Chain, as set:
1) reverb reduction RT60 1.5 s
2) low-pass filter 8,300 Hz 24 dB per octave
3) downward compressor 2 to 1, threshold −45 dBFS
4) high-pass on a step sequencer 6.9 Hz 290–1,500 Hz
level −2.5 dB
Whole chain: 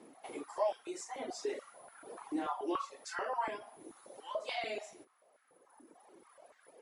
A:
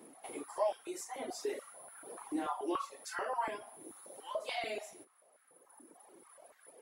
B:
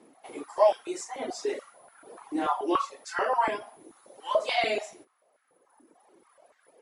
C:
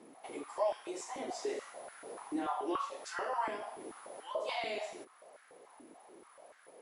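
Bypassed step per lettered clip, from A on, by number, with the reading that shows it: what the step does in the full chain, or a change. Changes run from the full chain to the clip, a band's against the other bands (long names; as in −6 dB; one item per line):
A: 2, 8 kHz band +3.0 dB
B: 3, average gain reduction 6.0 dB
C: 1, change in momentary loudness spread +4 LU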